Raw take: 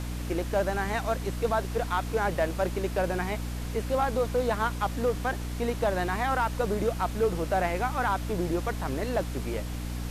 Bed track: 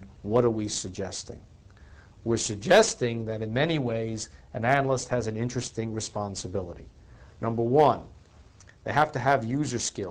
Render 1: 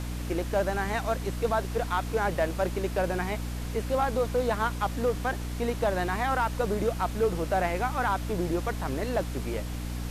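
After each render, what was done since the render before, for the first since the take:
no processing that can be heard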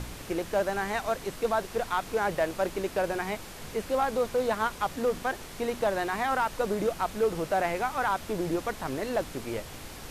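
hum removal 60 Hz, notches 5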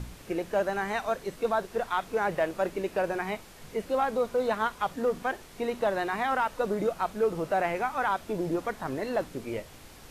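noise reduction from a noise print 7 dB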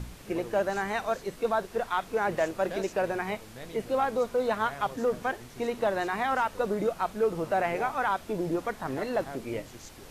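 mix in bed track −19.5 dB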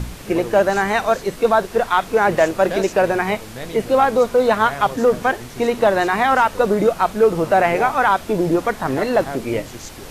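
level +12 dB

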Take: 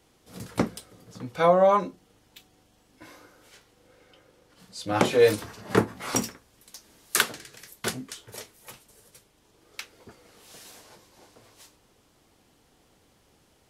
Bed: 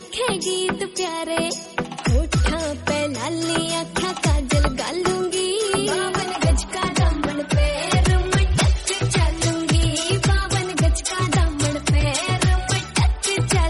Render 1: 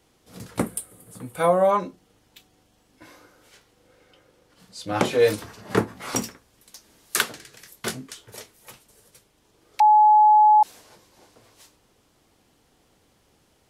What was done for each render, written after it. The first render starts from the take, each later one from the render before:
0:00.59–0:01.71: high shelf with overshoot 7,300 Hz +10 dB, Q 3
0:07.62–0:08.07: double-tracking delay 22 ms −9.5 dB
0:09.80–0:10.63: beep over 850 Hz −11 dBFS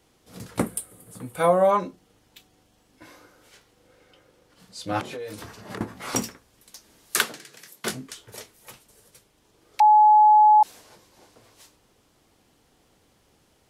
0:05.00–0:05.81: downward compressor 10 to 1, threshold −32 dBFS
0:07.20–0:07.90: high-pass filter 140 Hz 24 dB per octave
0:09.83–0:10.61: flat-topped bell 4,100 Hz −9.5 dB 2.6 octaves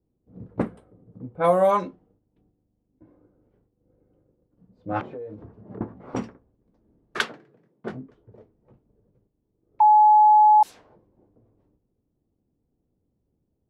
noise gate −59 dBFS, range −7 dB
low-pass that shuts in the quiet parts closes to 310 Hz, open at −15 dBFS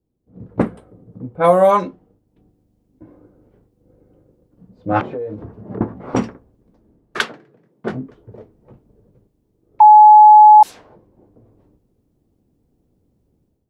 automatic gain control gain up to 11 dB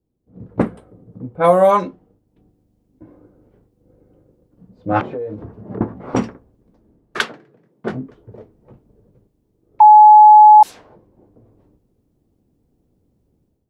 no processing that can be heard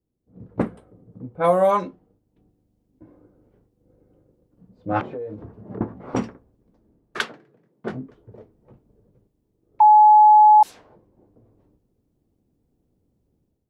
level −5.5 dB

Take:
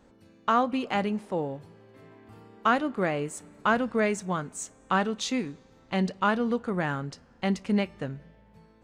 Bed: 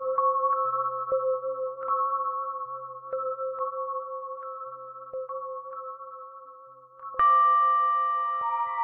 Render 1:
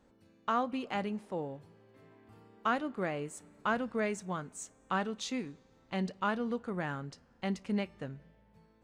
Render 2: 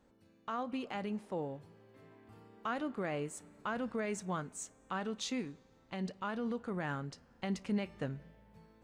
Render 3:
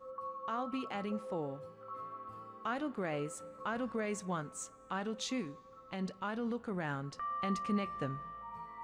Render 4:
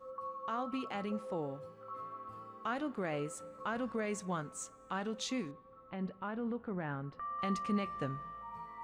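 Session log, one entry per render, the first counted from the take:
level −7.5 dB
brickwall limiter −28 dBFS, peak gain reduction 8.5 dB; speech leveller 2 s
mix in bed −19 dB
0:05.51–0:07.39: high-frequency loss of the air 440 metres

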